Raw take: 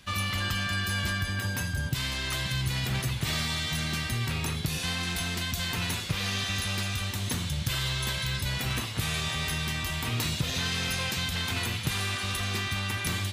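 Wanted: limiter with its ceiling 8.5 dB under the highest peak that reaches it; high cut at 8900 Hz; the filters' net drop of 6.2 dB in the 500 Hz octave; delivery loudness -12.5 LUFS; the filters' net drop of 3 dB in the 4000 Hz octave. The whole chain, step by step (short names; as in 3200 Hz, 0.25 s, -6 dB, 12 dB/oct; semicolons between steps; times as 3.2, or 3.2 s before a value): LPF 8900 Hz; bell 500 Hz -8.5 dB; bell 4000 Hz -3.5 dB; gain +22 dB; limiter -3.5 dBFS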